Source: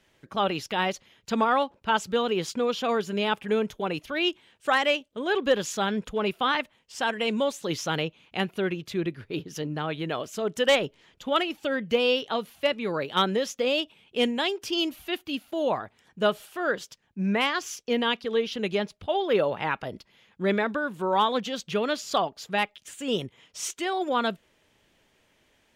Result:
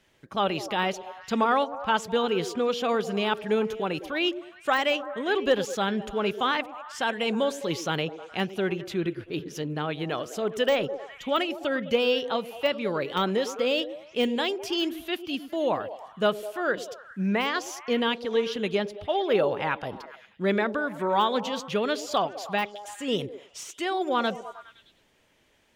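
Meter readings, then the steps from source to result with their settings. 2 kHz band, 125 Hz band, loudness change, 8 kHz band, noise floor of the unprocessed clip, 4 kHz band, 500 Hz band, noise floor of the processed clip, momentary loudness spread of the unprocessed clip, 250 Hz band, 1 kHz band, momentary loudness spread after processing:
-1.0 dB, 0.0 dB, 0.0 dB, -3.0 dB, -67 dBFS, -1.5 dB, +0.5 dB, -60 dBFS, 8 LU, 0.0 dB, 0.0 dB, 8 LU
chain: on a send: repeats whose band climbs or falls 103 ms, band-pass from 360 Hz, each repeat 0.7 oct, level -9 dB; on the sum: de-esser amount 75%

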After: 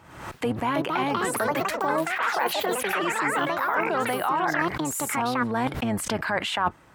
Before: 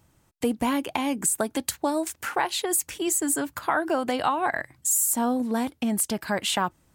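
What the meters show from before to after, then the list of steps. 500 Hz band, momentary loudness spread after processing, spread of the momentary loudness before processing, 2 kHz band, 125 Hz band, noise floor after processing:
+1.5 dB, 3 LU, 5 LU, +5.5 dB, +7.0 dB, -51 dBFS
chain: octave divider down 1 oct, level -4 dB; in parallel at +1.5 dB: peak limiter -21.5 dBFS, peak gain reduction 10.5 dB; on the sum: ever faster or slower copies 431 ms, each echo +5 st, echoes 3; peaking EQ 1.4 kHz +11 dB 2.7 oct; reverse; compression 6:1, threshold -22 dBFS, peak gain reduction 15.5 dB; reverse; high-pass 130 Hz 6 dB/octave; treble shelf 4.3 kHz -9.5 dB; swell ahead of each attack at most 69 dB/s

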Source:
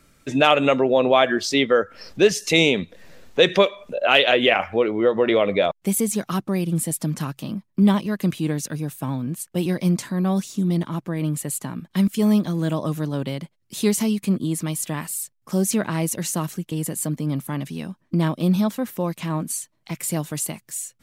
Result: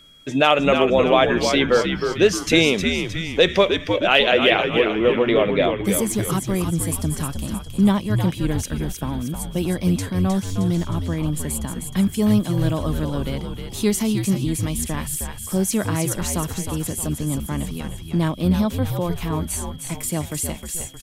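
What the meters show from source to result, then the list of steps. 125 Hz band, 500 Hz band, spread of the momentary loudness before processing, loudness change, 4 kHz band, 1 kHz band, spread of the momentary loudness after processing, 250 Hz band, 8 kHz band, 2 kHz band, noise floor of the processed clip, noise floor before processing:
+2.5 dB, +1.0 dB, 12 LU, +1.0 dB, +1.5 dB, +1.0 dB, 10 LU, +0.5 dB, +1.0 dB, +1.0 dB, -35 dBFS, -68 dBFS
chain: whistle 3.3 kHz -48 dBFS; frequency-shifting echo 311 ms, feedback 50%, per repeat -85 Hz, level -6 dB

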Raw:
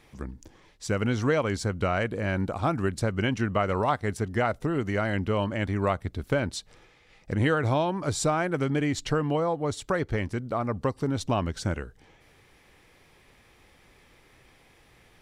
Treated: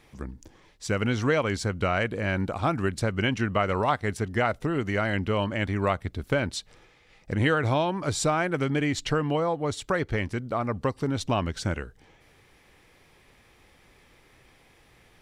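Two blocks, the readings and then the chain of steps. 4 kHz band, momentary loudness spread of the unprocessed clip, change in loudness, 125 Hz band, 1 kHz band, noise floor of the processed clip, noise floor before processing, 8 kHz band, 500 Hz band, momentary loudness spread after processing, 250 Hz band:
+3.0 dB, 6 LU, +0.5 dB, 0.0 dB, +1.0 dB, -59 dBFS, -59 dBFS, +1.0 dB, 0.0 dB, 7 LU, 0.0 dB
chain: dynamic bell 2.6 kHz, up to +4 dB, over -45 dBFS, Q 0.82

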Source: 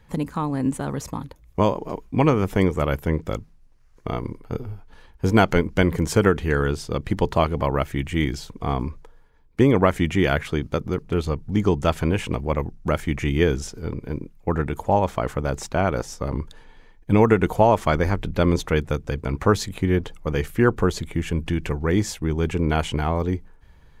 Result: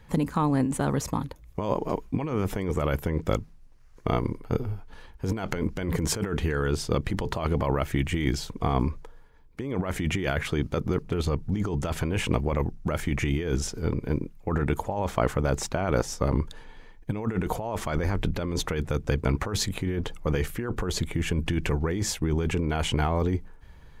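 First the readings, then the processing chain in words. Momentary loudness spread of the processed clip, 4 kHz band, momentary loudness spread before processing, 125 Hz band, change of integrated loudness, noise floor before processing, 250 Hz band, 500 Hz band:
5 LU, -1.5 dB, 12 LU, -3.5 dB, -5.5 dB, -52 dBFS, -5.5 dB, -7.0 dB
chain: compressor with a negative ratio -24 dBFS, ratio -1; trim -1.5 dB

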